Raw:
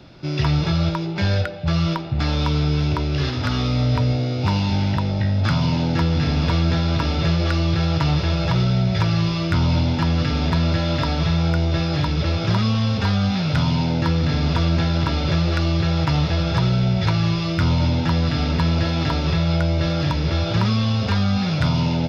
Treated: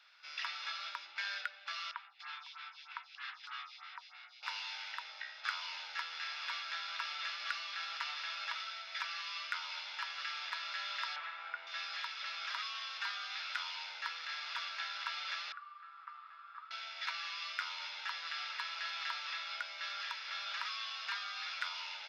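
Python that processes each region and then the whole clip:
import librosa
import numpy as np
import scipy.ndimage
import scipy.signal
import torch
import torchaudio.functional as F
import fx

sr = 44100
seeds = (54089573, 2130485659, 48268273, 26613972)

y = fx.chain(x, sr, fx.steep_highpass(hz=770.0, slope=48),
    fx.air_absorb(metres=130.0),
    fx.stagger_phaser(hz=3.2), at=(1.91, 4.43))
y = fx.chain(y, sr, fx.lowpass(hz=1900.0, slope=12),
    fx.env_flatten(amount_pct=100), at=(11.16, 11.67))
y = fx.chain(y, sr, fx.bandpass_q(hz=1200.0, q=9.0),
    fx.resample_bad(factor=4, down='none', up='filtered'), at=(15.52, 16.71))
y = scipy.signal.sosfilt(scipy.signal.butter(4, 1400.0, 'highpass', fs=sr, output='sos'), y)
y = fx.high_shelf(y, sr, hz=2600.0, db=-10.5)
y = F.gain(torch.from_numpy(y), -4.0).numpy()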